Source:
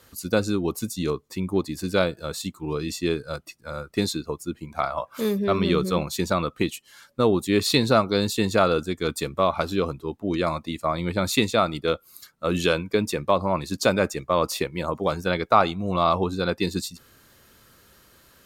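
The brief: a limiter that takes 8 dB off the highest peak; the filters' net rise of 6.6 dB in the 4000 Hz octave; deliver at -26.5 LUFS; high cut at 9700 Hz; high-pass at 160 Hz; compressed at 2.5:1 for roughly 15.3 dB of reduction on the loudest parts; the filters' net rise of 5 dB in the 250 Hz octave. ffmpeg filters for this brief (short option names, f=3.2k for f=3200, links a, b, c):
-af "highpass=160,lowpass=9.7k,equalizer=f=250:t=o:g=8,equalizer=f=4k:t=o:g=7.5,acompressor=threshold=-35dB:ratio=2.5,volume=9.5dB,alimiter=limit=-14dB:level=0:latency=1"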